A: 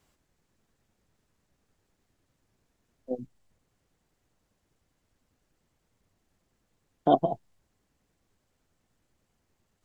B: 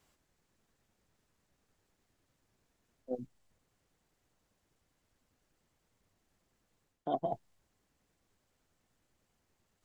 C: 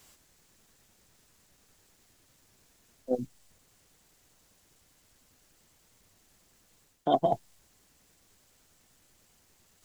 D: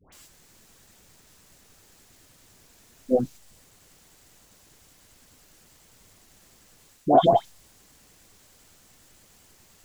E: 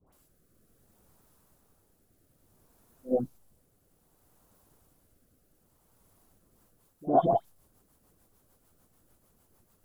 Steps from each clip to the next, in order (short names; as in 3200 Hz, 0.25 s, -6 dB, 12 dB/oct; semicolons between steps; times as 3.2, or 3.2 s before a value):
low shelf 400 Hz -3.5 dB; reverse; compressor 4:1, threshold -31 dBFS, peak gain reduction 12 dB; reverse; gain -1 dB
high shelf 3100 Hz +10.5 dB; gain +8.5 dB
dispersion highs, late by 0.126 s, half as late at 1100 Hz; gain +8.5 dB
band shelf 3700 Hz -12 dB 2.5 oct; rotary speaker horn 0.6 Hz, later 6.7 Hz, at 6.12; pre-echo 59 ms -19 dB; gain -5 dB